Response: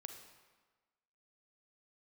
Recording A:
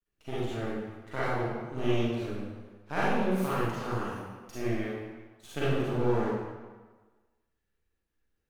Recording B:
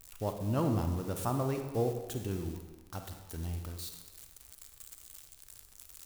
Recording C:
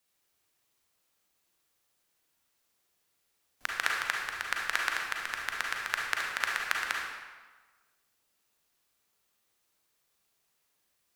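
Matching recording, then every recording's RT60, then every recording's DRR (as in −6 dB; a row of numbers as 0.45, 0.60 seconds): B; 1.3, 1.3, 1.3 seconds; −10.0, 5.0, −1.5 decibels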